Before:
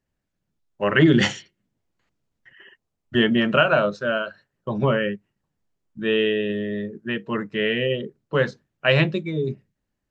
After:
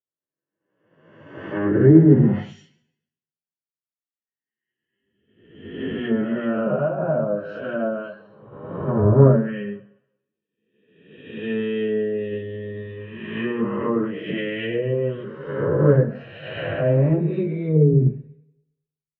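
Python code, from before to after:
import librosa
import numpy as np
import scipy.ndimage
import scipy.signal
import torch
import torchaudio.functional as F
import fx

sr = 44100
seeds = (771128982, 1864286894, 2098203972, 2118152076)

p1 = fx.spec_swells(x, sr, rise_s=1.08)
p2 = fx.highpass(p1, sr, hz=72.0, slope=6)
p3 = fx.rev_fdn(p2, sr, rt60_s=1.2, lf_ratio=0.9, hf_ratio=0.95, size_ms=36.0, drr_db=19.5)
p4 = fx.rider(p3, sr, range_db=4, speed_s=0.5)
p5 = fx.high_shelf(p4, sr, hz=3100.0, db=-11.5)
p6 = fx.stretch_vocoder_free(p5, sr, factor=1.9)
p7 = fx.env_lowpass_down(p6, sr, base_hz=820.0, full_db=-18.5)
p8 = fx.low_shelf(p7, sr, hz=420.0, db=8.5)
p9 = fx.hum_notches(p8, sr, base_hz=60, count=4)
p10 = p9 + fx.echo_single(p9, sr, ms=144, db=-18.0, dry=0)
p11 = fx.band_widen(p10, sr, depth_pct=100)
y = F.gain(torch.from_numpy(p11), -2.5).numpy()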